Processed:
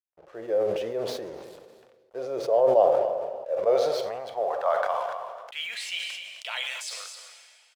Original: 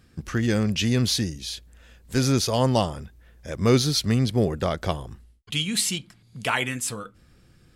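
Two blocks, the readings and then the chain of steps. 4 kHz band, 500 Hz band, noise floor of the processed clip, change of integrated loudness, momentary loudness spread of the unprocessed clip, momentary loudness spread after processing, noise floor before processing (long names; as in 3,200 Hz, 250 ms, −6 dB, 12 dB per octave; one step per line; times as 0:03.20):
−8.0 dB, +4.5 dB, −60 dBFS, −3.0 dB, 13 LU, 19 LU, −57 dBFS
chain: transient designer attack −5 dB, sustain +2 dB
parametric band 650 Hz +4.5 dB 1.1 octaves
band-pass filter sweep 400 Hz → 5,200 Hz, 0:03.19–0:07.09
dead-zone distortion −57 dBFS
low shelf with overshoot 390 Hz −13.5 dB, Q 3
single-tap delay 259 ms −20.5 dB
coupled-rooms reverb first 0.85 s, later 2.7 s, from −24 dB, DRR 9.5 dB
level that may fall only so fast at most 33 dB per second
level +1.5 dB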